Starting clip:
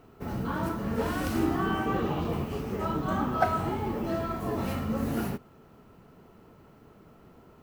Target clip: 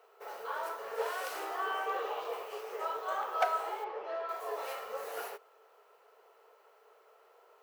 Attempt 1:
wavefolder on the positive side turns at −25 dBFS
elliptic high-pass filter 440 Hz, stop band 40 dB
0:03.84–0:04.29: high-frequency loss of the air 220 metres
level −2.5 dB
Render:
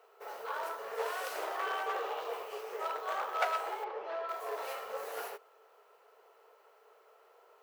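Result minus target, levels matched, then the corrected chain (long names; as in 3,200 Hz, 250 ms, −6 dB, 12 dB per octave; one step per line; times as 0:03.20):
wavefolder on the positive side: distortion +12 dB
wavefolder on the positive side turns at −17 dBFS
elliptic high-pass filter 440 Hz, stop band 40 dB
0:03.84–0:04.29: high-frequency loss of the air 220 metres
level −2.5 dB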